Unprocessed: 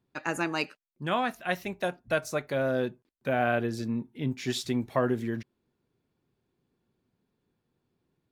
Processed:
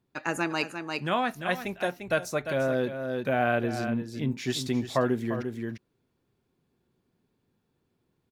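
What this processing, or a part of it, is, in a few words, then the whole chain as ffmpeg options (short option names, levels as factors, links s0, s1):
ducked delay: -filter_complex "[0:a]asplit=3[s0][s1][s2];[s1]adelay=348,volume=0.708[s3];[s2]apad=whole_len=381939[s4];[s3][s4]sidechaincompress=threshold=0.0251:ratio=8:attack=10:release=446[s5];[s0][s5]amix=inputs=2:normalize=0,volume=1.12"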